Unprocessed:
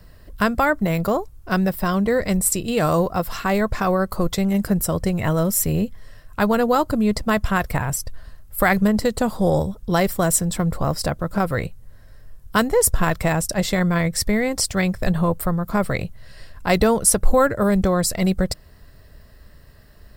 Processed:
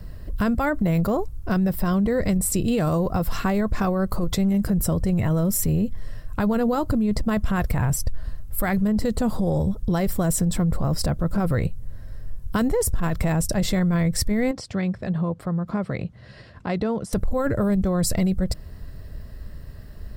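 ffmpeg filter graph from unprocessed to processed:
-filter_complex "[0:a]asettb=1/sr,asplit=3[s0][s1][s2];[s0]atrim=end=14.514[s3];[s1]atrim=start=14.51:end=17.13,asetpts=PTS-STARTPTS,afade=t=in:d=0.004:c=qsin,afade=t=out:st=2.616:d=0.004:c=qsin,acompressor=threshold=0.0178:ratio=2:attack=3.2:release=140:knee=1:detection=peak,highpass=130,lowpass=4500[s4];[s2]atrim=start=17.126[s5];[s3][s4]acrossfade=d=0.004:c1=hsin:c2=qsin[s6];[s6][s5]acrossfade=d=0.004:c1=qsin:c2=hsin,lowshelf=f=390:g=10.5,alimiter=limit=0.266:level=0:latency=1:release=20,acompressor=threshold=0.126:ratio=6"

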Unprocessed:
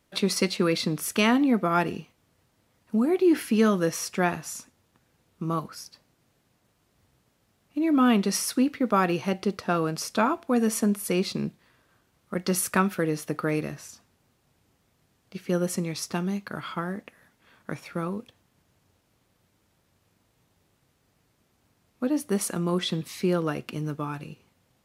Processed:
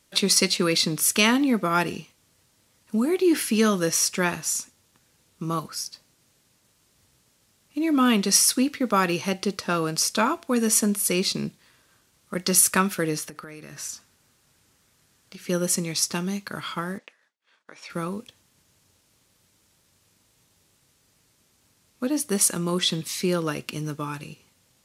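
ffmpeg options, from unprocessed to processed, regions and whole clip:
-filter_complex "[0:a]asettb=1/sr,asplit=3[s0][s1][s2];[s0]atrim=end=13.184[s3];[s1]atrim=start=13.18:end=15.46,asetpts=PTS-STARTPTS,afade=t=in:d=0.004:c=qsin,afade=t=out:st=2.276:d=0.004:c=qsin,acompressor=threshold=0.0141:ratio=16:attack=3.2:release=140:knee=1:detection=peak,equalizer=f=1500:t=o:w=0.82:g=4.5[s4];[s2]atrim=start=15.456[s5];[s3][s4]acrossfade=d=0.004:c1=hsin:c2=qsin[s6];[s6][s5]acrossfade=d=0.004:c1=qsin:c2=hsin,asettb=1/sr,asplit=3[s7][s8][s9];[s7]atrim=end=16.984[s10];[s8]atrim=start=16.98:end=17.9,asetpts=PTS-STARTPTS,afade=t=in:d=0.004:c=qsin,afade=t=out:st=0.916:d=0.004:c=qsin,agate=range=0.0224:threshold=0.00251:ratio=3:release=100:detection=peak,acompressor=threshold=0.00794:ratio=2.5:attack=3.2:release=140:knee=1:detection=peak,highpass=430,lowpass=5500[s11];[s9]atrim=start=17.896[s12];[s10][s11]acrossfade=d=0.004:c1=hsin:c2=qsin[s13];[s13][s12]acrossfade=d=0.004:c1=qsin:c2=hsin,equalizer=f=7800:w=0.37:g=11.5,bandreject=f=720:w=12"

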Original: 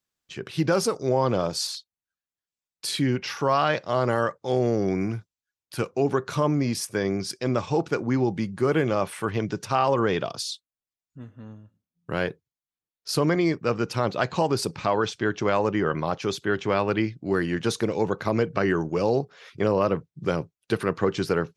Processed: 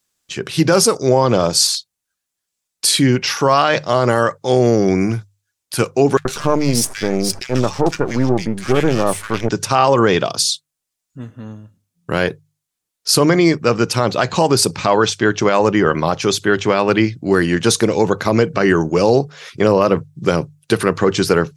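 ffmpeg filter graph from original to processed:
-filter_complex "[0:a]asettb=1/sr,asplit=3[s0][s1][s2];[s0]atrim=end=6.174[s3];[s1]atrim=start=6.17:end=9.49,asetpts=PTS-STARTPTS,afade=t=in:d=0.004:c=qsin,afade=t=out:st=3.316:d=0.004:c=qsin,aeval=exprs='if(lt(val(0),0),0.251*val(0),val(0))':c=same,acrossover=split=1600[s4][s5];[s4]adelay=80[s6];[s6][s5]amix=inputs=2:normalize=0,atrim=end_sample=146412[s7];[s2]atrim=start=9.486[s8];[s3][s7]acrossfade=d=0.004:c1=hsin:c2=qsin[s9];[s9][s8]acrossfade=d=0.004:c1=qsin:c2=hsin,equalizer=f=8600:t=o:w=1.6:g=8,bandreject=f=50:t=h:w=6,bandreject=f=100:t=h:w=6,bandreject=f=150:t=h:w=6,alimiter=level_in=3.55:limit=0.891:release=50:level=0:latency=1,volume=0.891"

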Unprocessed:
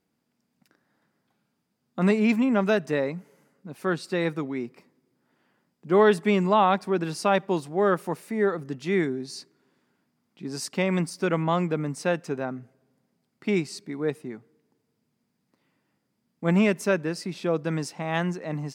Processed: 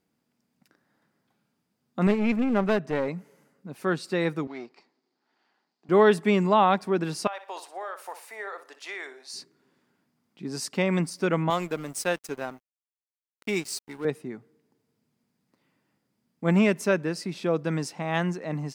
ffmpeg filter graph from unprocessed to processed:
-filter_complex "[0:a]asettb=1/sr,asplit=3[s0][s1][s2];[s0]atrim=end=2.074[s3];[s1]atrim=start=2.07:end=3.08,asetpts=PTS-STARTPTS,afade=t=in:d=0.004:c=qsin,afade=t=out:st=1.006:d=0.004:c=qsin,lowpass=f=2400:p=1,aeval=exprs='clip(val(0),-1,0.0447)':c=same[s4];[s2]atrim=start=3.076[s5];[s3][s4]acrossfade=d=0.004:c1=hsin:c2=qsin[s6];[s6][s5]acrossfade=d=0.004:c1=qsin:c2=hsin,asettb=1/sr,asplit=3[s7][s8][s9];[s7]atrim=end=4.474[s10];[s8]atrim=start=4.47:end=5.89,asetpts=PTS-STARTPTS,afade=t=in:d=0.004:c=qsin,afade=t=out:st=1.416:d=0.004:c=qsin,aeval=exprs='if(lt(val(0),0),0.447*val(0),val(0))':c=same,highpass=370,equalizer=f=530:t=q:w=4:g=-8,equalizer=f=790:t=q:w=4:g=5,equalizer=f=4400:t=q:w=4:g=9,lowpass=f=6800:w=0.5412,lowpass=f=6800:w=1.3066[s11];[s9]atrim=start=5.886[s12];[s10][s11]acrossfade=d=0.004:c1=hsin:c2=qsin[s13];[s13][s12]acrossfade=d=0.004:c1=qsin:c2=hsin,asettb=1/sr,asplit=3[s14][s15][s16];[s14]atrim=end=7.274[s17];[s15]atrim=start=7.27:end=9.34,asetpts=PTS-STARTPTS,afade=t=in:d=0.004:c=qsin,afade=t=out:st=2.066:d=0.004:c=qsin,highpass=f=620:w=0.5412,highpass=f=620:w=1.3066,acompressor=threshold=0.0282:ratio=12:attack=3.2:release=140:knee=1:detection=peak,aecho=1:1:60|120|180:0.251|0.0754|0.0226,atrim=end_sample=91287[s18];[s16]atrim=start=9.336[s19];[s17][s18]acrossfade=d=0.004:c1=hsin:c2=qsin[s20];[s20][s19]acrossfade=d=0.004:c1=qsin:c2=hsin,asettb=1/sr,asplit=3[s21][s22][s23];[s21]atrim=end=11.504[s24];[s22]atrim=start=11.5:end=14.05,asetpts=PTS-STARTPTS,afade=t=in:d=0.004:c=qsin,afade=t=out:st=2.546:d=0.004:c=qsin,aemphasis=mode=production:type=bsi,aeval=exprs='sgn(val(0))*max(abs(val(0))-0.00794,0)':c=same[s25];[s23]atrim=start=14.046[s26];[s24][s25]acrossfade=d=0.004:c1=hsin:c2=qsin[s27];[s27][s26]acrossfade=d=0.004:c1=qsin:c2=hsin"

